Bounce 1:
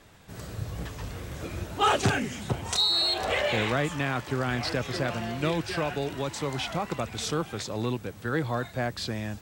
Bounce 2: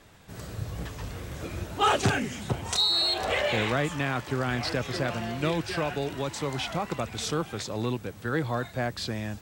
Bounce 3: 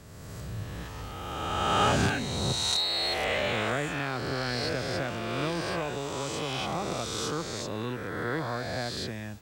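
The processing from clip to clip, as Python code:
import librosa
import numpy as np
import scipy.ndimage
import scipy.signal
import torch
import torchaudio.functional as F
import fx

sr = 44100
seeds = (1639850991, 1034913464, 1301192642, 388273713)

y1 = x
y2 = fx.spec_swells(y1, sr, rise_s=2.05)
y2 = y2 * librosa.db_to_amplitude(-6.0)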